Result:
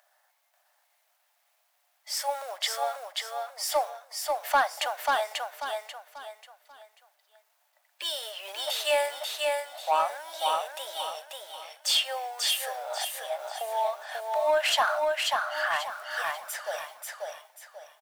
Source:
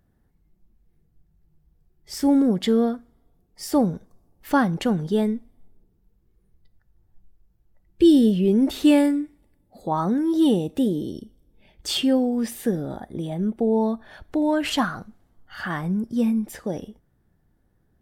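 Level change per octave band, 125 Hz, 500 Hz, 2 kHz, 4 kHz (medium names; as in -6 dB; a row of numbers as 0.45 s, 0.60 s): under -40 dB, -5.0 dB, +4.0 dB, +4.0 dB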